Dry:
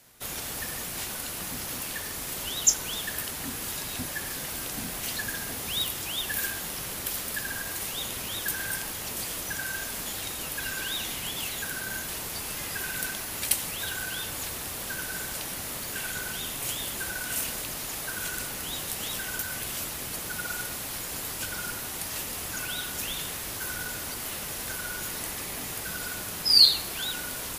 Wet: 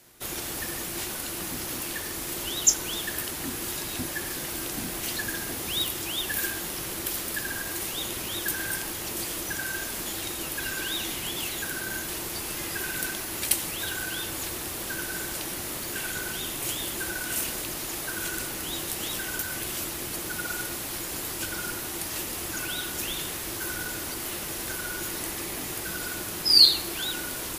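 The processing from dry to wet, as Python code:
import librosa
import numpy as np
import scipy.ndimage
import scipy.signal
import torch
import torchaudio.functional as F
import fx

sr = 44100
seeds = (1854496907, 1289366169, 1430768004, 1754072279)

y = fx.peak_eq(x, sr, hz=340.0, db=11.0, octaves=0.28)
y = F.gain(torch.from_numpy(y), 1.0).numpy()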